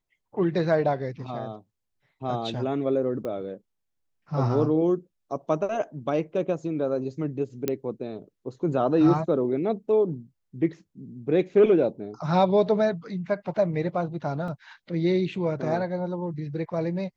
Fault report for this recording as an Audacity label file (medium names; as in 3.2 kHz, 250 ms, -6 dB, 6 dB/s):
3.250000	3.250000	pop -22 dBFS
7.680000	7.680000	pop -11 dBFS
14.480000	14.480000	dropout 2.9 ms